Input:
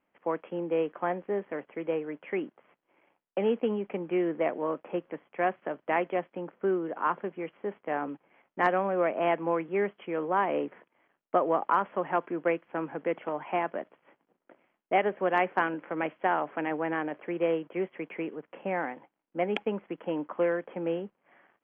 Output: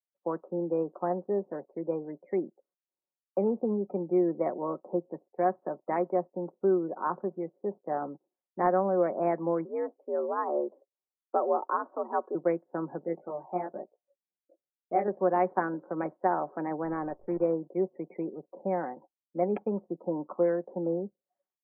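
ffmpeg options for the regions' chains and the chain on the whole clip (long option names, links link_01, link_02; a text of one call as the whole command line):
ffmpeg -i in.wav -filter_complex "[0:a]asettb=1/sr,asplit=3[link_01][link_02][link_03];[link_01]atrim=end=9.654[link_04];[link_02]atrim=start=9.65:end=12.35,asetpts=PTS-STARTPTS,afade=type=in:duration=0.004:curve=qsin,afade=type=out:start_time=2.696:duration=0.004:curve=qsin,lowpass=frequency=1400:poles=1,afreqshift=73,bandreject=frequency=700:width=16[link_05];[link_03]atrim=start=12.346[link_06];[link_04][link_05]acrossfade=duration=0.004:curve1=hsin:curve2=qsin[link_07];[link_07][link_06]acrossfade=duration=0.004:curve1=qsin:curve2=hsin,asettb=1/sr,asplit=3[link_08][link_09][link_10];[link_08]atrim=end=13.044[link_11];[link_09]atrim=start=13.04:end=15.08,asetpts=PTS-STARTPTS,afade=type=in:duration=0.004:curve=qsin,afade=type=out:start_time=2.036:duration=0.004:curve=qsin,bandreject=frequency=1000:width=8,flanger=delay=18:depth=4.6:speed=1.1[link_12];[link_10]atrim=start=15.076[link_13];[link_11][link_12]acrossfade=duration=0.004:curve1=hsin:curve2=qsin[link_14];[link_14][link_13]acrossfade=duration=0.004:curve1=qsin:curve2=hsin,asettb=1/sr,asplit=3[link_15][link_16][link_17];[link_15]atrim=end=16.834[link_18];[link_16]atrim=start=16.83:end=17.45,asetpts=PTS-STARTPTS,afade=type=in:duration=0.004:curve=qsin,afade=type=out:start_time=0.616:duration=0.004:curve=qsin,highpass=61,acrusher=bits=7:dc=4:mix=0:aa=0.000001[link_19];[link_17]atrim=start=17.446[link_20];[link_18][link_19]acrossfade=duration=0.004:curve1=hsin:curve2=qsin[link_21];[link_21][link_20]acrossfade=duration=0.004:curve1=qsin:curve2=hsin,lowpass=1000,afftdn=noise_reduction=33:noise_floor=-48,aecho=1:1:5.4:0.4" out.wav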